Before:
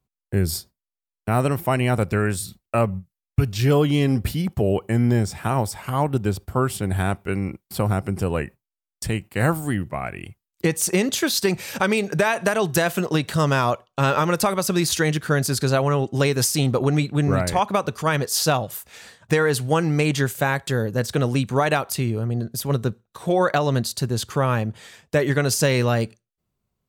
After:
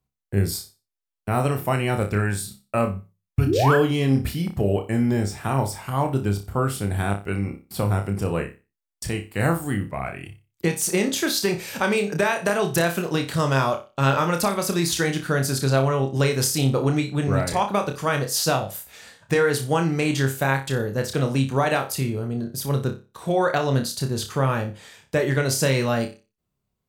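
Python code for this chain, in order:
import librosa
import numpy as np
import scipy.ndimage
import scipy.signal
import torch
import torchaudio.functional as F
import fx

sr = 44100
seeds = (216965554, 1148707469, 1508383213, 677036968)

y = fx.spec_paint(x, sr, seeds[0], shape='rise', start_s=3.46, length_s=0.3, low_hz=250.0, high_hz=1800.0, level_db=-19.0)
y = fx.room_flutter(y, sr, wall_m=5.1, rt60_s=0.29)
y = y * 10.0 ** (-2.5 / 20.0)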